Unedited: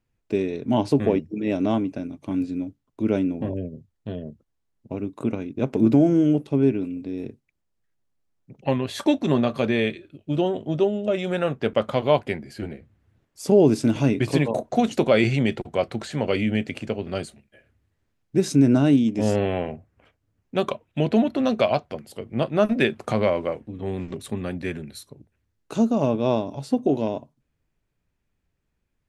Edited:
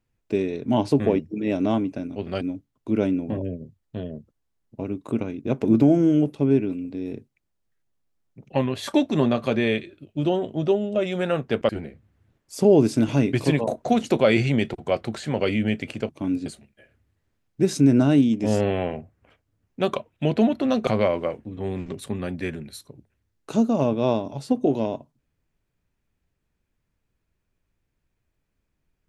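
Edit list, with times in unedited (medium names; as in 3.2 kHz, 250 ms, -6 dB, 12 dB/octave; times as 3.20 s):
2.16–2.53 s: swap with 16.96–17.21 s
11.81–12.56 s: delete
21.62–23.09 s: delete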